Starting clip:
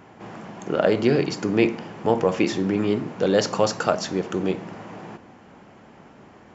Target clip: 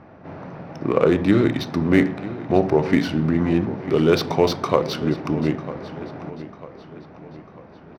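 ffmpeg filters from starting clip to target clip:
-filter_complex "[0:a]highshelf=f=6.1k:g=-3.5,asplit=2[a][b];[b]aecho=0:1:776|1552|2328|3104:0.178|0.0836|0.0393|0.0185[c];[a][c]amix=inputs=2:normalize=0,asetrate=36162,aresample=44100,adynamicsmooth=sensitivity=5.5:basefreq=3.4k,volume=2.5dB"

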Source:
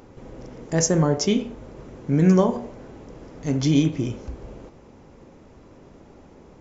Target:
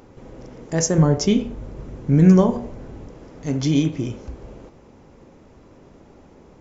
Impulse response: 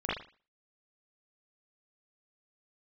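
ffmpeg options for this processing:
-filter_complex "[0:a]asettb=1/sr,asplit=3[a][b][c];[a]atrim=end=0.984[d];[b]atrim=start=0.98:end=3.08,asetpts=PTS-STARTPTS,afade=t=in:d=0.004:c=qsin,afade=t=out:st=2.096:d=0.004:c=qsin,lowshelf=f=150:g=11.5[e];[c]atrim=start=3.076[f];[d][e]acrossfade=d=0.004:c1=hsin:c2=qsin[g];[g][f]acrossfade=d=0.004:c1=qsin:c2=hsin"

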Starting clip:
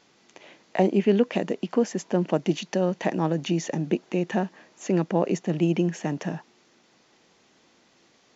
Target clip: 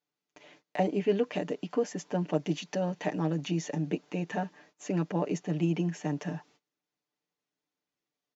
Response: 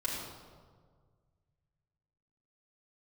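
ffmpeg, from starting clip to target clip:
-af "aecho=1:1:6.8:0.74,agate=range=-24dB:threshold=-51dB:ratio=16:detection=peak,volume=-7.5dB"

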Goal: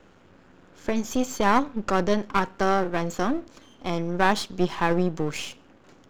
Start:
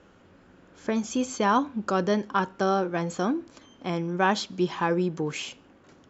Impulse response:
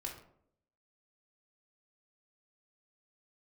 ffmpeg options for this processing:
-af "aeval=exprs='if(lt(val(0),0),0.251*val(0),val(0))':c=same,volume=4.5dB"

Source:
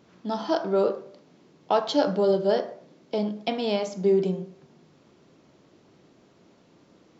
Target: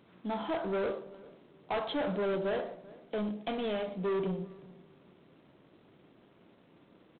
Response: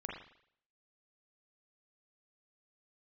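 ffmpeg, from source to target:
-filter_complex "[0:a]asoftclip=type=tanh:threshold=-25.5dB,asplit=2[a][b];[b]adelay=391,lowpass=f=1.1k:p=1,volume=-19.5dB,asplit=2[c][d];[d]adelay=391,lowpass=f=1.1k:p=1,volume=0.26[e];[c][e]amix=inputs=2:normalize=0[f];[a][f]amix=inputs=2:normalize=0,volume=-3dB" -ar 8000 -c:a adpcm_g726 -b:a 24k

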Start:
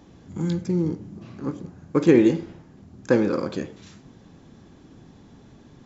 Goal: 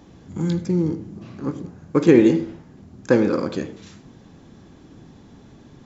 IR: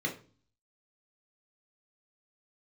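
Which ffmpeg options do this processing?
-filter_complex "[0:a]asplit=2[a][b];[1:a]atrim=start_sample=2205,adelay=78[c];[b][c]afir=irnorm=-1:irlink=0,volume=-22.5dB[d];[a][d]amix=inputs=2:normalize=0,volume=2.5dB"

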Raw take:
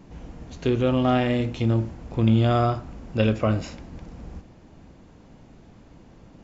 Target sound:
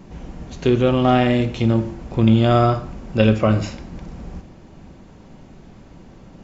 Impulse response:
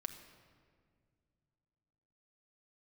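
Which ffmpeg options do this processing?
-filter_complex "[0:a]asplit=2[a][b];[1:a]atrim=start_sample=2205,atrim=end_sample=6615[c];[b][c]afir=irnorm=-1:irlink=0,volume=6.5dB[d];[a][d]amix=inputs=2:normalize=0,volume=-2.5dB"

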